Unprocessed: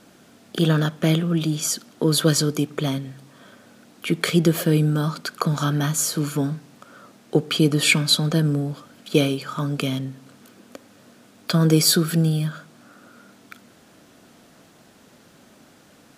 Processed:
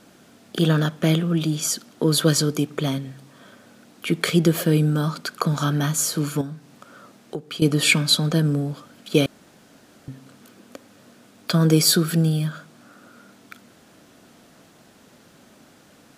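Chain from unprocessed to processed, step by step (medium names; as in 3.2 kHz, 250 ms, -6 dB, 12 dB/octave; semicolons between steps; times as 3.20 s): 6.41–7.62 s: compression 3:1, threshold -32 dBFS, peak gain reduction 14.5 dB; 9.26–10.08 s: room tone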